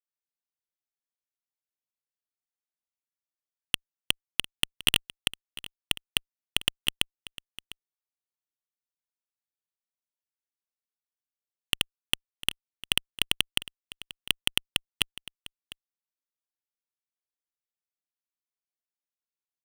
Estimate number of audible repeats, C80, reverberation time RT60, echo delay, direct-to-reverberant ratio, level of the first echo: 1, no reverb audible, no reverb audible, 702 ms, no reverb audible, −18.0 dB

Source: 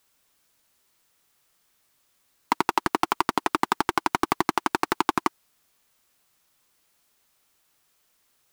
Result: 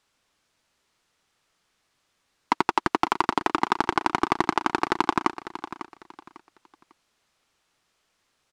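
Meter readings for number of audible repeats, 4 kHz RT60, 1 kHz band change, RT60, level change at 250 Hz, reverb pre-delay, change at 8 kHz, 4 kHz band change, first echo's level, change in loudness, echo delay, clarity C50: 2, no reverb audible, +1.0 dB, no reverb audible, +1.0 dB, no reverb audible, −5.0 dB, −0.5 dB, −13.0 dB, +0.5 dB, 549 ms, no reverb audible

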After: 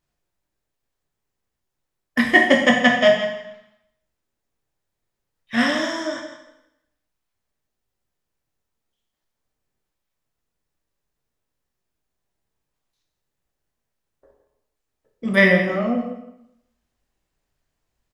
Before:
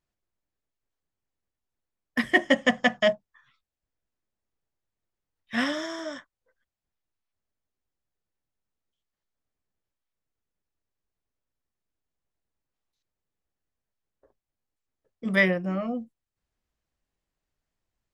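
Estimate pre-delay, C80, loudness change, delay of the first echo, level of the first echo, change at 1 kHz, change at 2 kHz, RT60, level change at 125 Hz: 6 ms, 6.5 dB, +7.5 dB, 167 ms, −12.0 dB, +8.5 dB, +8.0 dB, 0.85 s, +7.0 dB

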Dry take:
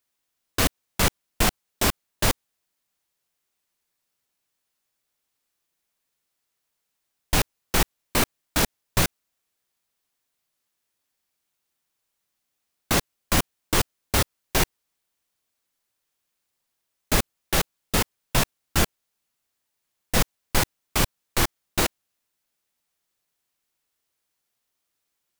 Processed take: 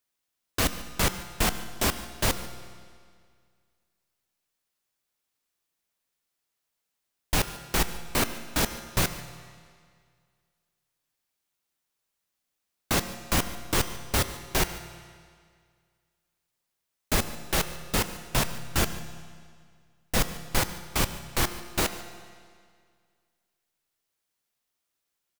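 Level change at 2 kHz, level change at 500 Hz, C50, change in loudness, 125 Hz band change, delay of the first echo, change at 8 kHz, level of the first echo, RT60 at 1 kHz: −3.0 dB, −3.0 dB, 11.0 dB, −3.0 dB, −3.0 dB, 145 ms, −3.0 dB, −19.0 dB, 2.0 s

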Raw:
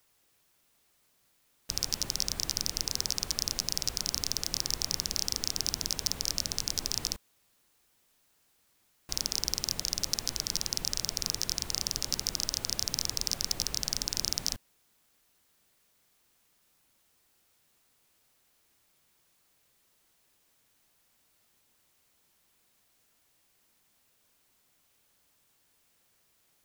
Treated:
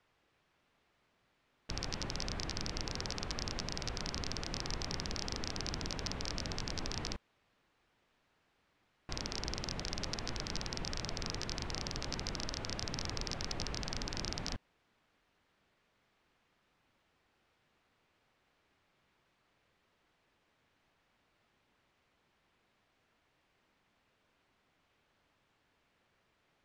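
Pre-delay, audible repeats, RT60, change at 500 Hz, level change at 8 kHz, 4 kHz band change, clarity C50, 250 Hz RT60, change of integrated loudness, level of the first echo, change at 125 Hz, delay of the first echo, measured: no reverb audible, no echo audible, no reverb audible, +2.0 dB, −14.0 dB, −9.5 dB, no reverb audible, no reverb audible, −9.0 dB, no echo audible, +2.0 dB, no echo audible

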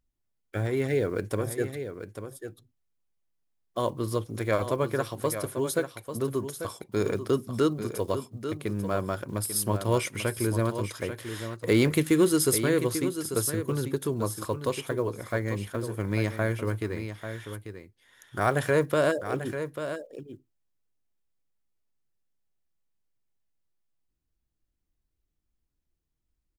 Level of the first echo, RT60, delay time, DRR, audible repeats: −9.5 dB, no reverb audible, 842 ms, no reverb audible, 1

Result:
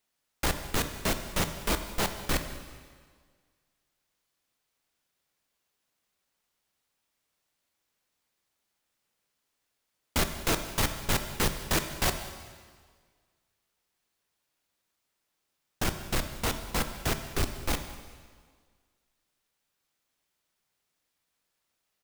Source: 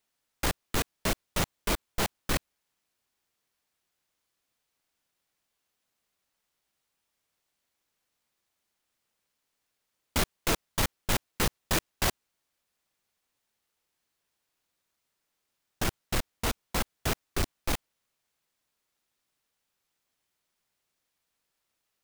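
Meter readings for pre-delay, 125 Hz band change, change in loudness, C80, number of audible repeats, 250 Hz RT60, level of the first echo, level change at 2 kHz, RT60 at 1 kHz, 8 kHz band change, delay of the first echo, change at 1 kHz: 7 ms, +1.0 dB, +0.5 dB, 10.0 dB, 1, 1.7 s, −21.0 dB, +0.5 dB, 1.7 s, +0.5 dB, 193 ms, +1.0 dB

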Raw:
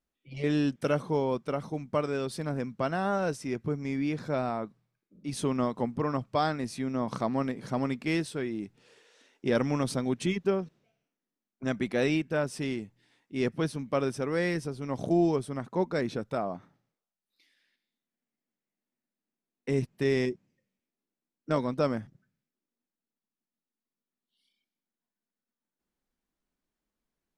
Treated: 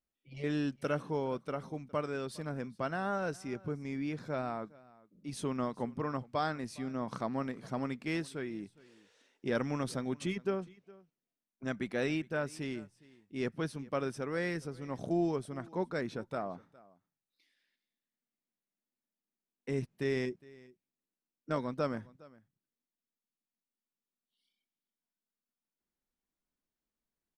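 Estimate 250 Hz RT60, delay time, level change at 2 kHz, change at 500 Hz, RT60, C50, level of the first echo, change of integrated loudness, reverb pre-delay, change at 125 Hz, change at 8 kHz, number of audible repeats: no reverb audible, 411 ms, −4.0 dB, −6.5 dB, no reverb audible, no reverb audible, −22.5 dB, −6.0 dB, no reverb audible, −6.5 dB, −6.5 dB, 1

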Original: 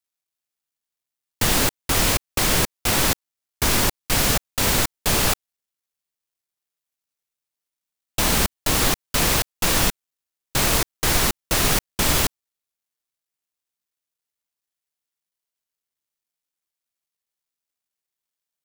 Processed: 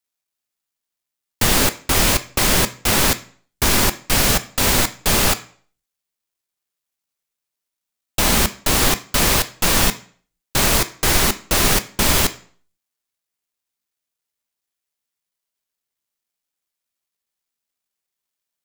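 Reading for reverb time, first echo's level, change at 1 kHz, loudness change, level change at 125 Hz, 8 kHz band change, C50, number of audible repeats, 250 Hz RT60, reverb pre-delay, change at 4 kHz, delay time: 0.50 s, no echo audible, +3.5 dB, +3.5 dB, +2.5 dB, +3.5 dB, 16.0 dB, no echo audible, 0.50 s, 3 ms, +3.5 dB, no echo audible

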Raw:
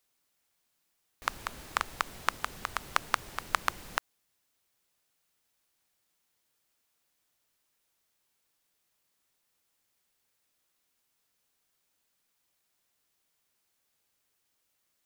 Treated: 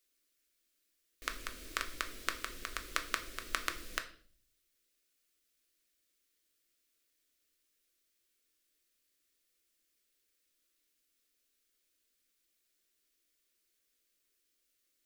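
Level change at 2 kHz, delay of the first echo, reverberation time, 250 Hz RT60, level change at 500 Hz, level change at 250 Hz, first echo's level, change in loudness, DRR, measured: −4.0 dB, no echo audible, 0.50 s, 0.80 s, −5.0 dB, −2.0 dB, no echo audible, −5.0 dB, 6.0 dB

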